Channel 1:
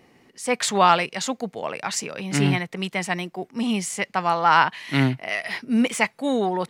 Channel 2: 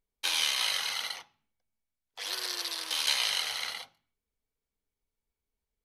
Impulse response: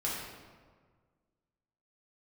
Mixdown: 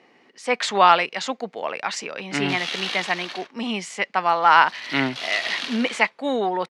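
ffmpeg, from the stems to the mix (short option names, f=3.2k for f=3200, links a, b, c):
-filter_complex "[0:a]lowshelf=f=320:g=-8,volume=3dB,asplit=2[a][b];[1:a]aeval=exprs='val(0)*sgn(sin(2*PI*250*n/s))':c=same,adelay=2250,volume=2.5dB[c];[b]apad=whole_len=356840[d];[c][d]sidechaincompress=threshold=-21dB:ratio=8:attack=43:release=498[e];[a][e]amix=inputs=2:normalize=0,highpass=210,lowpass=4.4k"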